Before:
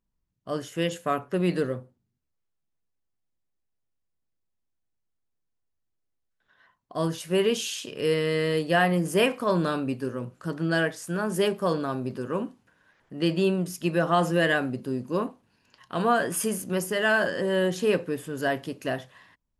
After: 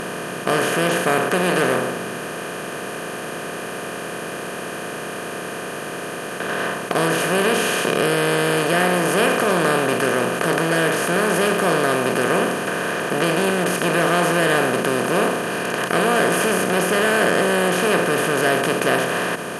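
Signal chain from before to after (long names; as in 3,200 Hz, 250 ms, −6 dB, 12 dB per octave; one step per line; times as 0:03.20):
compressor on every frequency bin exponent 0.2
saturating transformer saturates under 960 Hz
level −1.5 dB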